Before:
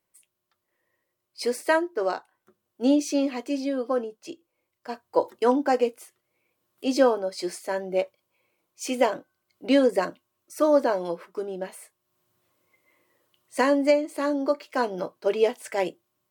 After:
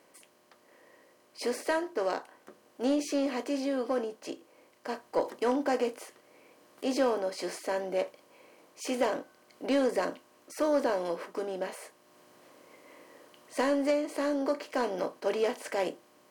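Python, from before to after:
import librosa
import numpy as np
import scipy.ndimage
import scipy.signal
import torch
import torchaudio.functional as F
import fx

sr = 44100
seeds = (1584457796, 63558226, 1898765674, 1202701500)

y = fx.bin_compress(x, sr, power=0.6)
y = 10.0 ** (-8.0 / 20.0) * np.tanh(y / 10.0 ** (-8.0 / 20.0))
y = y * 10.0 ** (-8.5 / 20.0)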